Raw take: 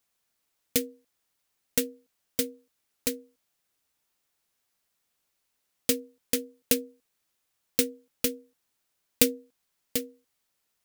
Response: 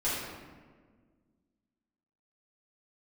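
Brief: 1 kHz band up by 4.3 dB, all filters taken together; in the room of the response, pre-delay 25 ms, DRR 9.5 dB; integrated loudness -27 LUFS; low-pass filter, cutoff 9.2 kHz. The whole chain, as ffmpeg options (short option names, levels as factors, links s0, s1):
-filter_complex "[0:a]lowpass=9200,equalizer=f=1000:t=o:g=6,asplit=2[s0][s1];[1:a]atrim=start_sample=2205,adelay=25[s2];[s1][s2]afir=irnorm=-1:irlink=0,volume=0.126[s3];[s0][s3]amix=inputs=2:normalize=0,volume=1.78"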